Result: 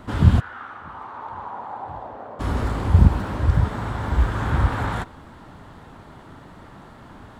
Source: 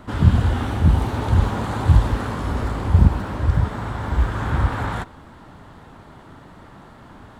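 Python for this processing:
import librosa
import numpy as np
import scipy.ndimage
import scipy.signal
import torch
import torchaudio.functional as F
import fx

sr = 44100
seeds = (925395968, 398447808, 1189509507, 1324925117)

y = fx.bandpass_q(x, sr, hz=fx.line((0.39, 1500.0), (2.39, 630.0)), q=3.3, at=(0.39, 2.39), fade=0.02)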